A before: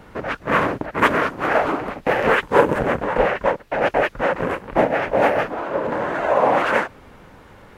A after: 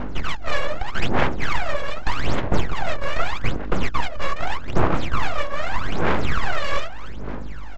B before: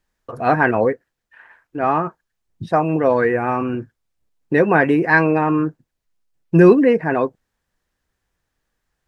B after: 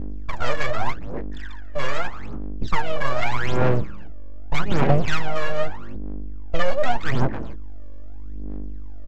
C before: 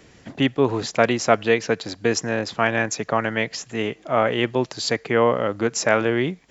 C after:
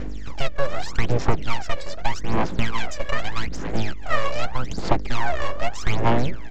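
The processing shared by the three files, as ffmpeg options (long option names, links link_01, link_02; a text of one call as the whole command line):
ffmpeg -i in.wav -filter_complex "[0:a]acrossover=split=210|600|1800[link_01][link_02][link_03][link_04];[link_01]acompressor=threshold=-30dB:ratio=4[link_05];[link_02]acompressor=threshold=-31dB:ratio=4[link_06];[link_03]acompressor=threshold=-33dB:ratio=4[link_07];[link_04]acompressor=threshold=-41dB:ratio=4[link_08];[link_05][link_06][link_07][link_08]amix=inputs=4:normalize=0,acrossover=split=120|1600[link_09][link_10][link_11];[link_10]crystalizer=i=6:c=0[link_12];[link_09][link_12][link_11]amix=inputs=3:normalize=0,asplit=2[link_13][link_14];[link_14]adelay=279.9,volume=-15dB,highshelf=frequency=4000:gain=-6.3[link_15];[link_13][link_15]amix=inputs=2:normalize=0,aeval=exprs='val(0)+0.0126*(sin(2*PI*50*n/s)+sin(2*PI*2*50*n/s)/2+sin(2*PI*3*50*n/s)/3+sin(2*PI*4*50*n/s)/4+sin(2*PI*5*50*n/s)/5)':channel_layout=same,aresample=16000,aeval=exprs='abs(val(0))':channel_layout=same,aresample=44100,aphaser=in_gain=1:out_gain=1:delay=1.8:decay=0.78:speed=0.82:type=sinusoidal" out.wav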